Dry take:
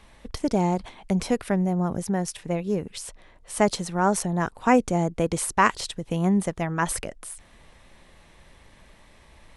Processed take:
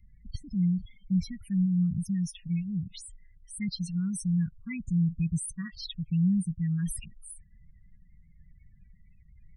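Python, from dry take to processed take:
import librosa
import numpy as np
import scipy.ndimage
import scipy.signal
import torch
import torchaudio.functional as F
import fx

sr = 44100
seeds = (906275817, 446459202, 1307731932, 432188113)

y = fx.spec_topn(x, sr, count=16)
y = scipy.signal.sosfilt(scipy.signal.ellip(3, 1.0, 70, [170.0, 2500.0], 'bandstop', fs=sr, output='sos'), y)
y = fx.dynamic_eq(y, sr, hz=110.0, q=1.1, threshold_db=-41.0, ratio=4.0, max_db=5)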